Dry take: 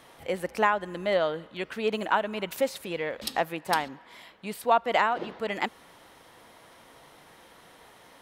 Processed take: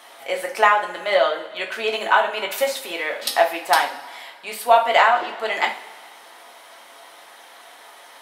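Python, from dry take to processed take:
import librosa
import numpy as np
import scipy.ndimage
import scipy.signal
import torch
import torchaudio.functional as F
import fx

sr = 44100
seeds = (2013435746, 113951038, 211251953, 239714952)

y = scipy.signal.sosfilt(scipy.signal.butter(2, 610.0, 'highpass', fs=sr, output='sos'), x)
y = fx.rev_double_slope(y, sr, seeds[0], early_s=0.32, late_s=1.8, knee_db=-18, drr_db=0.0)
y = y * 10.0 ** (7.0 / 20.0)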